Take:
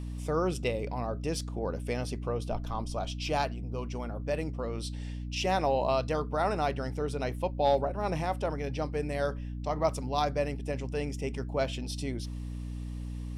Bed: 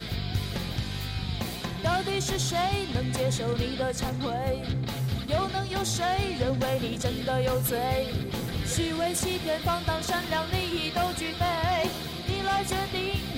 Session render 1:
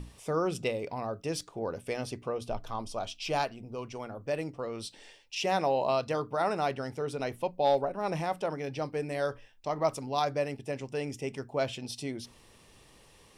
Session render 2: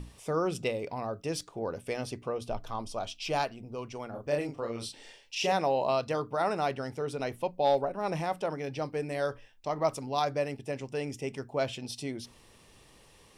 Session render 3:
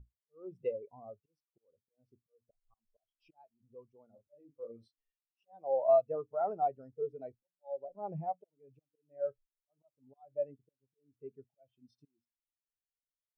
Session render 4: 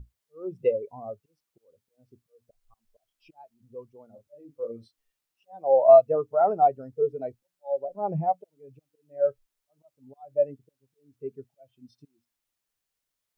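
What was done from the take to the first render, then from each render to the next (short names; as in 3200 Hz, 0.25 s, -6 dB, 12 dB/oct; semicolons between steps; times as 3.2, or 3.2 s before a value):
notches 60/120/180/240/300 Hz
4.1–5.52 doubler 34 ms -3 dB
auto swell 0.372 s; spectral expander 2.5:1
gain +11.5 dB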